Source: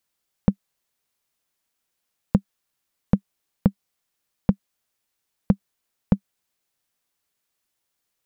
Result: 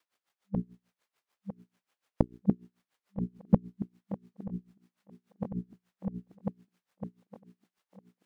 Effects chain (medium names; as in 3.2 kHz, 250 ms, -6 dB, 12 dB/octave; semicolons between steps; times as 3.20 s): time reversed locally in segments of 147 ms; hum notches 60/120/180/240/300/360/420 Hz; overdrive pedal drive 18 dB, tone 1.5 kHz, clips at -5.5 dBFS; thinning echo 954 ms, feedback 57%, high-pass 200 Hz, level -10 dB; logarithmic tremolo 6.8 Hz, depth 22 dB